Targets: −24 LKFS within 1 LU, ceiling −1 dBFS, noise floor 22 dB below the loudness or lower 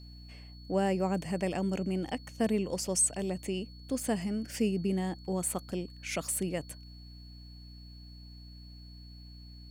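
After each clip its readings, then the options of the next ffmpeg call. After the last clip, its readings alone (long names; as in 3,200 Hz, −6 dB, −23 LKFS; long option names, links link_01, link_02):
mains hum 60 Hz; hum harmonics up to 300 Hz; level of the hum −47 dBFS; interfering tone 4,400 Hz; level of the tone −55 dBFS; integrated loudness −32.5 LKFS; sample peak −17.0 dBFS; target loudness −24.0 LKFS
→ -af "bandreject=frequency=60:width_type=h:width=4,bandreject=frequency=120:width_type=h:width=4,bandreject=frequency=180:width_type=h:width=4,bandreject=frequency=240:width_type=h:width=4,bandreject=frequency=300:width_type=h:width=4"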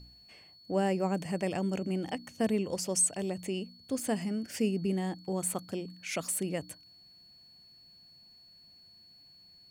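mains hum none found; interfering tone 4,400 Hz; level of the tone −55 dBFS
→ -af "bandreject=frequency=4400:width=30"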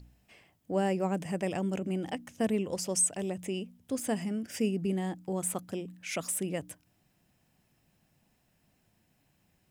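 interfering tone none found; integrated loudness −32.5 LKFS; sample peak −17.0 dBFS; target loudness −24.0 LKFS
→ -af "volume=8.5dB"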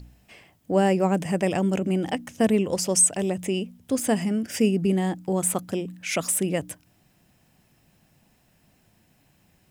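integrated loudness −24.0 LKFS; sample peak −8.5 dBFS; background noise floor −63 dBFS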